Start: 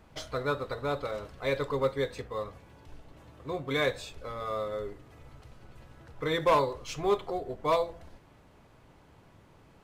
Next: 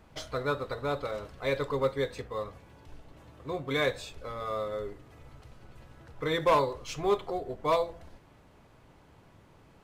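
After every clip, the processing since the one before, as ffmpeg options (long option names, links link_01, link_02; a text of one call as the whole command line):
ffmpeg -i in.wav -af anull out.wav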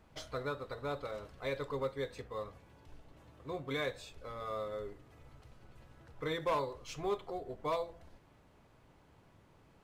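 ffmpeg -i in.wav -af "alimiter=limit=-20.5dB:level=0:latency=1:release=468,volume=-6dB" out.wav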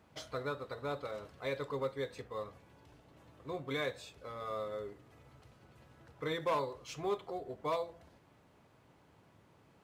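ffmpeg -i in.wav -af "highpass=87" out.wav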